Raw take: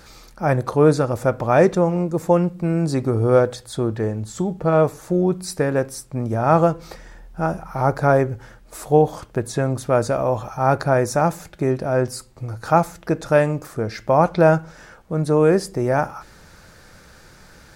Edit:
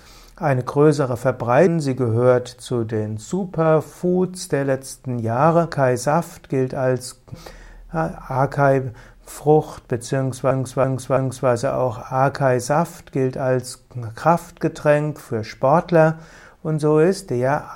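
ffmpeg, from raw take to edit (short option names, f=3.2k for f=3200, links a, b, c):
-filter_complex "[0:a]asplit=7[a][b][c][d][e][f][g];[a]atrim=end=1.672[h];[b]atrim=start=2.738:end=6.792[i];[c]atrim=start=10.808:end=12.432[j];[d]atrim=start=6.788:end=9.962[k];[e]atrim=start=9.628:end=9.962[l];[f]atrim=start=9.628:end=9.962[m];[g]atrim=start=9.628[n];[h][i]acrossfade=d=0.004:c1=hsin:c2=hsin[o];[o][j]acrossfade=d=0.004:c1=hsin:c2=hsin[p];[p][k]acrossfade=d=0.004:c1=hsin:c2=hsin[q];[q][l]acrossfade=d=0.004:c1=hsin:c2=hsin[r];[r][m]acrossfade=d=0.004:c1=hsin:c2=hsin[s];[s][n]acrossfade=d=0.004:c1=hsin:c2=hsin"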